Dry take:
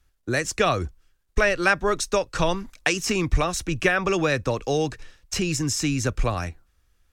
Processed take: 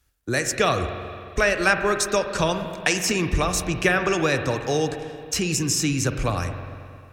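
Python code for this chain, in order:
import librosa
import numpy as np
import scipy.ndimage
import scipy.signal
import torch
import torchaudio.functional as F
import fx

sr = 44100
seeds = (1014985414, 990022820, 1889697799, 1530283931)

y = scipy.signal.sosfilt(scipy.signal.butter(2, 43.0, 'highpass', fs=sr, output='sos'), x)
y = fx.high_shelf(y, sr, hz=6700.0, db=7.5)
y = fx.rev_spring(y, sr, rt60_s=2.3, pass_ms=(44, 55), chirp_ms=50, drr_db=7.0)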